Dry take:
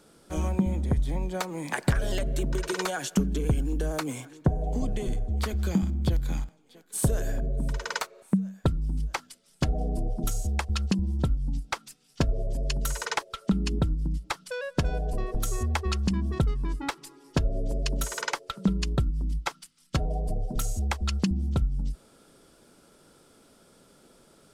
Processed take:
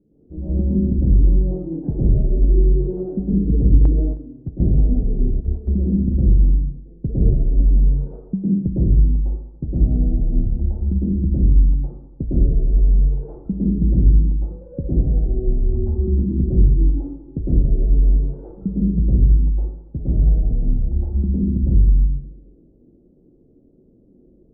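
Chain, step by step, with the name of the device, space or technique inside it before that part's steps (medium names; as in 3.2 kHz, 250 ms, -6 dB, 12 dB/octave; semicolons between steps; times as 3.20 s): next room (low-pass 350 Hz 24 dB/octave; reverberation RT60 1.0 s, pre-delay 104 ms, DRR -11 dB); 3.85–5.78 s: gate -18 dBFS, range -10 dB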